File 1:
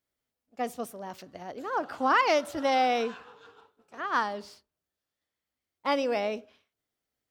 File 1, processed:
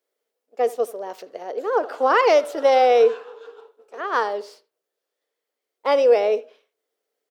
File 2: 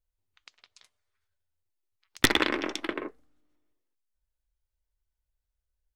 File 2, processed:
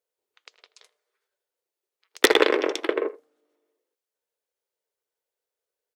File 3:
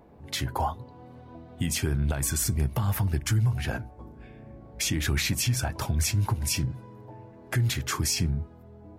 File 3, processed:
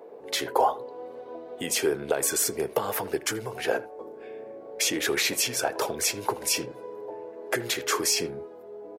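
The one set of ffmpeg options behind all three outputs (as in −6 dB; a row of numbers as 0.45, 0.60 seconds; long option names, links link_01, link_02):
-filter_complex "[0:a]highpass=frequency=450:width_type=q:width=4.9,asplit=2[link_01][link_02];[link_02]adelay=80,highpass=300,lowpass=3400,asoftclip=type=hard:threshold=-13dB,volume=-18dB[link_03];[link_01][link_03]amix=inputs=2:normalize=0,volume=3dB"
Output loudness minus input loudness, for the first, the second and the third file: +9.0, +5.0, +1.0 LU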